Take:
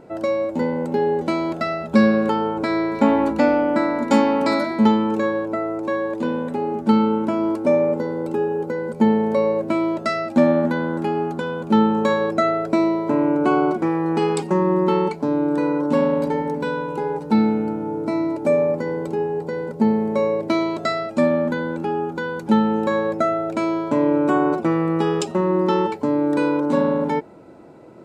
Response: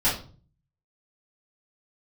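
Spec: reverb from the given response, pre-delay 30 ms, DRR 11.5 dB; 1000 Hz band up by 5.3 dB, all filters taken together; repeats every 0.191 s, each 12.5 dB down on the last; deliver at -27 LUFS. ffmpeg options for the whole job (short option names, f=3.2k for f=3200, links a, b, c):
-filter_complex "[0:a]equalizer=f=1k:t=o:g=6.5,aecho=1:1:191|382|573:0.237|0.0569|0.0137,asplit=2[a][b];[1:a]atrim=start_sample=2205,adelay=30[c];[b][c]afir=irnorm=-1:irlink=0,volume=-24.5dB[d];[a][d]amix=inputs=2:normalize=0,volume=-8.5dB"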